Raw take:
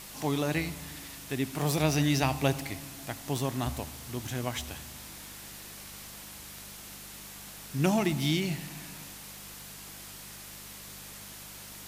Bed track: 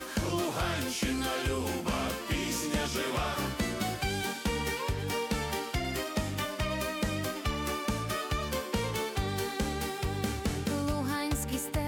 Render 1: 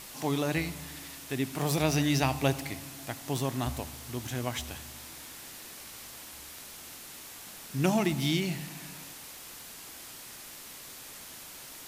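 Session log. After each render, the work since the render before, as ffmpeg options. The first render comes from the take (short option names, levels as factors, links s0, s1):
-af "bandreject=f=50:t=h:w=4,bandreject=f=100:t=h:w=4,bandreject=f=150:t=h:w=4,bandreject=f=200:t=h:w=4"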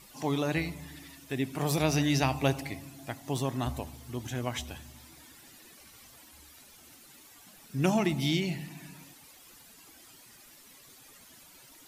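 -af "afftdn=nr=12:nf=-46"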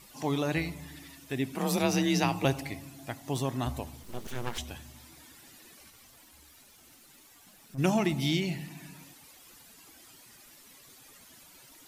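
-filter_complex "[0:a]asettb=1/sr,asplit=3[s0][s1][s2];[s0]atrim=end=1.554[s3];[s1]atrim=start=1.55:end=2.45,asetpts=PTS-STARTPTS,afade=t=in:d=0.004:c=qsin,afade=t=out:st=0.896:d=0.004:c=qsin,afreqshift=35[s4];[s2]atrim=start=2.446[s5];[s3][s4]acrossfade=d=0.004:c1=hsin:c2=qsin[s6];[s6][s5]acrossfade=d=0.004:c1=qsin:c2=hsin,asettb=1/sr,asplit=3[s7][s8][s9];[s7]atrim=end=4.034[s10];[s8]atrim=start=4.03:end=4.58,asetpts=PTS-STARTPTS,afade=t=in:d=0.004:c=qsin,afade=t=out:st=0.546:d=0.004:c=qsin,aeval=exprs='abs(val(0))':c=same[s11];[s9]atrim=start=4.576[s12];[s10][s11]acrossfade=d=0.004:c1=hsin:c2=qsin[s13];[s13][s12]acrossfade=d=0.004:c1=qsin:c2=hsin,asplit=3[s14][s15][s16];[s14]afade=t=out:st=5.89:d=0.02[s17];[s15]aeval=exprs='(tanh(89.1*val(0)+0.55)-tanh(0.55))/89.1':c=same,afade=t=in:st=5.89:d=0.02,afade=t=out:st=7.77:d=0.02[s18];[s16]afade=t=in:st=7.77:d=0.02[s19];[s17][s18][s19]amix=inputs=3:normalize=0"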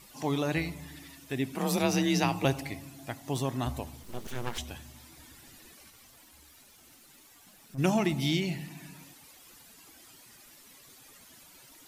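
-filter_complex "[0:a]asettb=1/sr,asplit=3[s0][s1][s2];[s0]atrim=end=5.194[s3];[s1]atrim=start=5.19:end=5.72,asetpts=PTS-STARTPTS,afade=t=in:d=0.004:c=qsin,afade=t=out:st=0.526:d=0.004:c=qsin,lowshelf=f=100:g=11.5[s4];[s2]atrim=start=5.716[s5];[s3][s4]acrossfade=d=0.004:c1=hsin:c2=qsin[s6];[s6][s5]acrossfade=d=0.004:c1=qsin:c2=hsin"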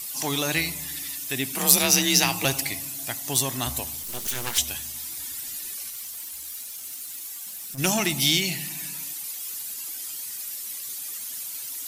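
-af "asoftclip=type=tanh:threshold=0.126,crystalizer=i=9:c=0"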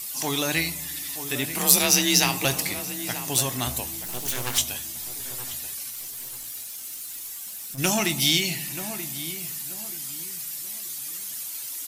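-filter_complex "[0:a]asplit=2[s0][s1];[s1]adelay=24,volume=0.224[s2];[s0][s2]amix=inputs=2:normalize=0,asplit=2[s3][s4];[s4]adelay=932,lowpass=f=1900:p=1,volume=0.299,asplit=2[s5][s6];[s6]adelay=932,lowpass=f=1900:p=1,volume=0.32,asplit=2[s7][s8];[s8]adelay=932,lowpass=f=1900:p=1,volume=0.32[s9];[s3][s5][s7][s9]amix=inputs=4:normalize=0"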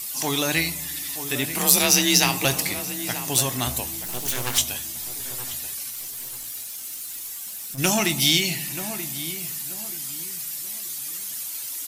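-af "volume=1.26,alimiter=limit=0.794:level=0:latency=1"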